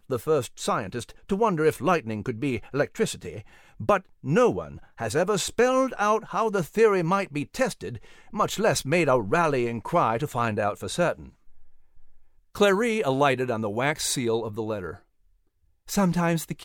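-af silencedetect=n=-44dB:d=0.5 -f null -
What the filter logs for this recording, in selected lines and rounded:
silence_start: 14.98
silence_end: 15.87 | silence_duration: 0.90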